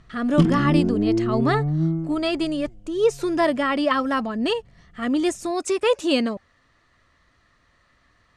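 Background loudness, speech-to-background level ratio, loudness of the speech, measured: -23.0 LUFS, -0.5 dB, -23.5 LUFS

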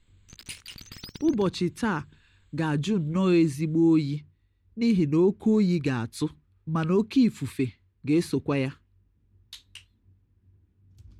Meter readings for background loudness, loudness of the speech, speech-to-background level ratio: -45.0 LUFS, -25.5 LUFS, 19.5 dB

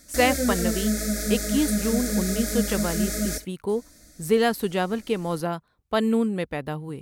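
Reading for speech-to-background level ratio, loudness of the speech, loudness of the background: -0.5 dB, -26.5 LUFS, -26.0 LUFS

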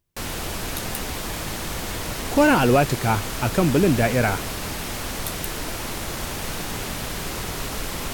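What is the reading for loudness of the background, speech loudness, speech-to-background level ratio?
-29.0 LUFS, -20.5 LUFS, 8.5 dB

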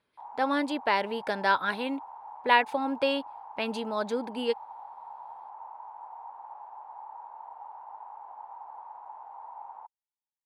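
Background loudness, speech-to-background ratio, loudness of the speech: -45.0 LUFS, 16.0 dB, -29.0 LUFS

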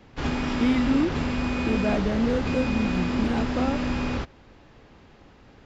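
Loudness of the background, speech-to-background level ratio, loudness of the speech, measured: -27.5 LUFS, 0.5 dB, -27.0 LUFS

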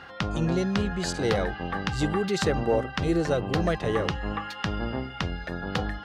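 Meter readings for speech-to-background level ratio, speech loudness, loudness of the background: 3.5 dB, -28.0 LUFS, -31.5 LUFS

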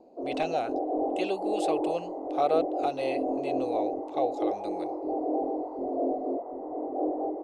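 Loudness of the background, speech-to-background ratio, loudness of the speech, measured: -31.5 LUFS, -1.0 dB, -32.5 LUFS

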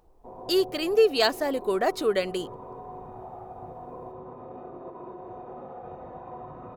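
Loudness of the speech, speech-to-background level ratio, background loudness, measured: -25.0 LUFS, 17.0 dB, -42.0 LUFS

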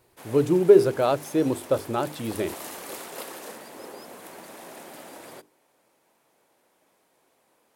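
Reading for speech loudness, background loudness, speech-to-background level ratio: -23.0 LUFS, -40.5 LUFS, 17.5 dB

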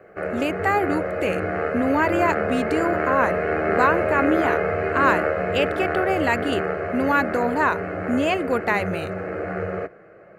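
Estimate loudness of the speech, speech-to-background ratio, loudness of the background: -24.0 LUFS, 1.0 dB, -25.0 LUFS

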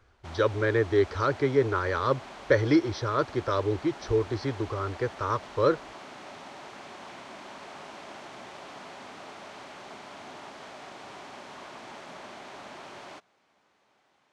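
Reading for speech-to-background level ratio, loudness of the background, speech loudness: 16.5 dB, -44.0 LUFS, -27.5 LUFS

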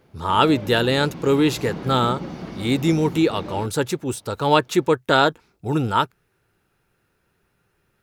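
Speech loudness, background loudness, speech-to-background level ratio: -21.0 LUFS, -34.0 LUFS, 13.0 dB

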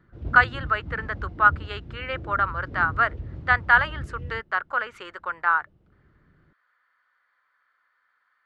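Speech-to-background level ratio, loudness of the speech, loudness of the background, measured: 13.5 dB, -23.5 LUFS, -37.0 LUFS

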